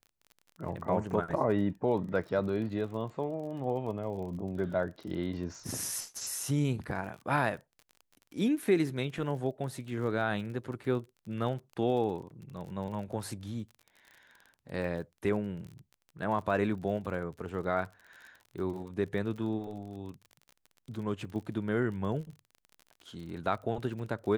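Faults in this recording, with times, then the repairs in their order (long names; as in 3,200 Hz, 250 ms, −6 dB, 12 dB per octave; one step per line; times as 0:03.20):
surface crackle 34 per second −41 dBFS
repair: click removal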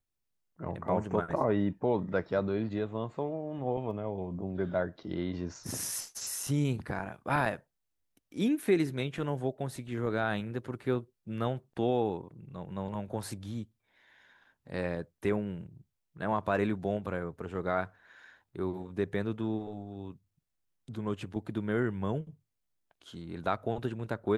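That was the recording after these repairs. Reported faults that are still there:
none of them is left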